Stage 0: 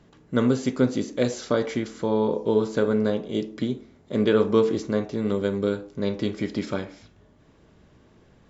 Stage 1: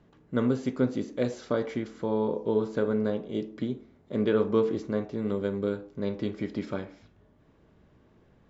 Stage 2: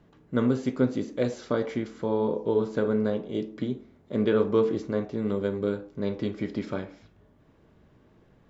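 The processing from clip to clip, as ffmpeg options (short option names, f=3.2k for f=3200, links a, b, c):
-af "highshelf=f=4.3k:g=-12,volume=-4.5dB"
-af "flanger=delay=6:depth=2.9:regen=-82:speed=0.85:shape=triangular,volume=6dB"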